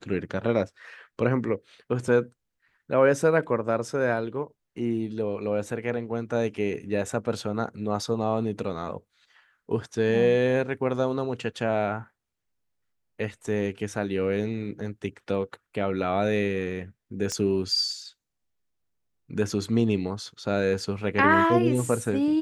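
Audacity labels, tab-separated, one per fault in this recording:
17.320000	17.320000	pop -16 dBFS

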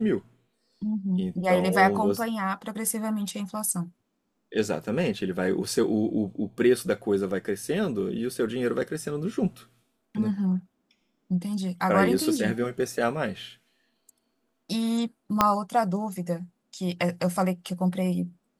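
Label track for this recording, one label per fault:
15.410000	15.410000	pop -5 dBFS

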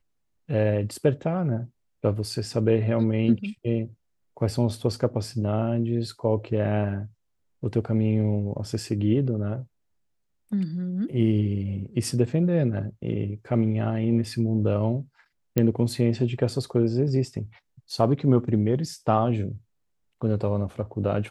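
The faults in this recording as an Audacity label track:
15.580000	15.580000	pop -9 dBFS

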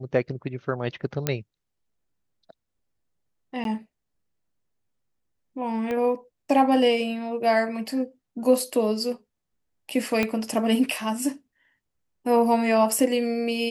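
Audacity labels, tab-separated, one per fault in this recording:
1.270000	1.270000	pop -8 dBFS
3.640000	3.650000	dropout 12 ms
5.910000	5.910000	pop -18 dBFS
10.230000	10.230000	pop -10 dBFS

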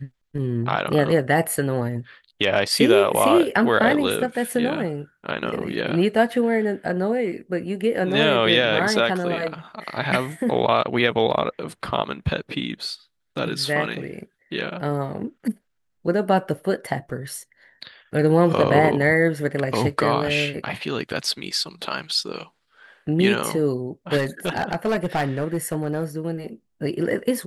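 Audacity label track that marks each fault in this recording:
24.170000	26.040000	clipped -17.5 dBFS

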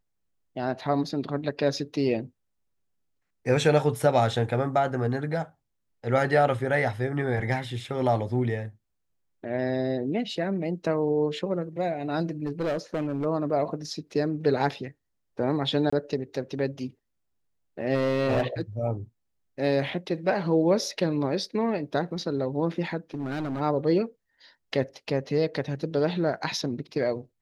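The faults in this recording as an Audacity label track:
12.450000	13.260000	clipped -24 dBFS
15.900000	15.930000	dropout 25 ms
17.940000	18.610000	clipped -20 dBFS
23.140000	23.610000	clipped -27 dBFS

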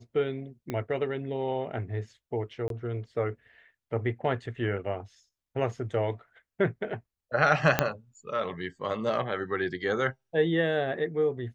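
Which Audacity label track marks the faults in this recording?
0.700000	0.700000	pop -19 dBFS
2.680000	2.700000	dropout 22 ms
7.790000	7.790000	pop -6 dBFS

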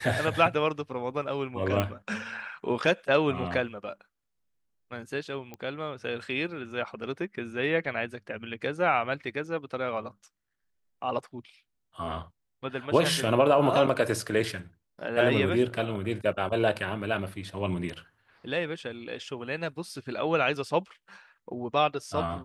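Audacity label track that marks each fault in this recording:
1.800000	1.800000	pop -13 dBFS
5.540000	5.540000	pop -25 dBFS

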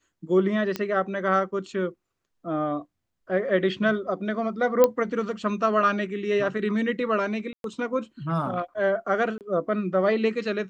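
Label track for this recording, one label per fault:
0.760000	0.760000	pop -13 dBFS
4.840000	4.840000	pop -6 dBFS
7.530000	7.640000	dropout 112 ms
9.380000	9.410000	dropout 28 ms

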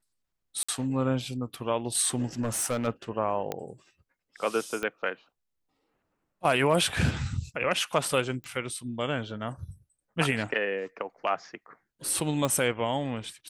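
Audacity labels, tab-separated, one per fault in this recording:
0.630000	0.690000	dropout 55 ms
2.410000	2.870000	clipped -24.5 dBFS
3.520000	3.520000	pop -16 dBFS
4.830000	4.830000	pop -18 dBFS
8.440000	8.440000	pop -27 dBFS
12.450000	12.450000	pop -14 dBFS

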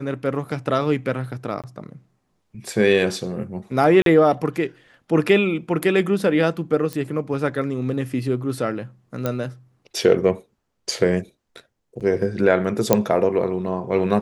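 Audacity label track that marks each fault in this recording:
1.620000	1.640000	dropout 17 ms
4.020000	4.060000	dropout 42 ms
6.930000	6.930000	pop -14 dBFS
9.260000	9.260000	pop -10 dBFS
12.000000	12.010000	dropout 7.3 ms
12.930000	12.930000	pop 0 dBFS

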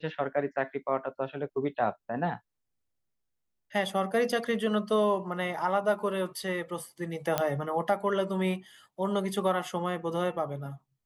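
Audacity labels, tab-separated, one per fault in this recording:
7.380000	7.380000	pop -11 dBFS

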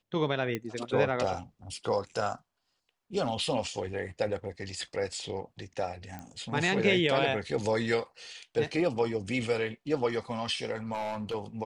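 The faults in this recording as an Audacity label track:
0.550000	0.550000	pop -18 dBFS
6.190000	6.190000	pop -26 dBFS
10.930000	11.350000	clipped -30 dBFS

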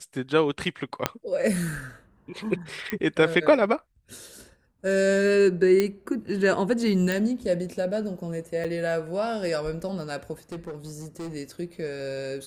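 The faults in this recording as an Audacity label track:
1.060000	1.060000	pop -6 dBFS
2.900000	2.900000	pop -14 dBFS
5.800000	5.800000	pop -10 dBFS
7.120000	7.120000	pop
8.640000	8.650000	dropout 6.1 ms
10.520000	11.350000	clipped -31.5 dBFS

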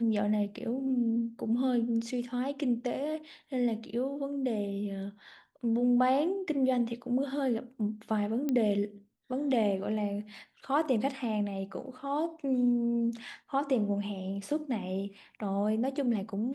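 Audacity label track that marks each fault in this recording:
8.490000	8.490000	pop -19 dBFS

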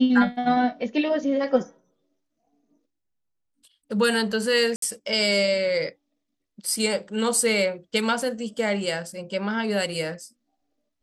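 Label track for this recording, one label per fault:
4.760000	4.820000	dropout 63 ms

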